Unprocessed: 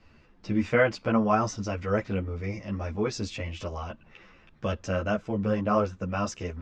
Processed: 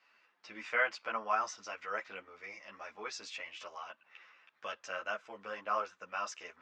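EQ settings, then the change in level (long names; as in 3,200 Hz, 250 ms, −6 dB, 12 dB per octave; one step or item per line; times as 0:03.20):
high-pass filter 1,300 Hz 12 dB per octave
high-shelf EQ 2,700 Hz −9 dB
+1.0 dB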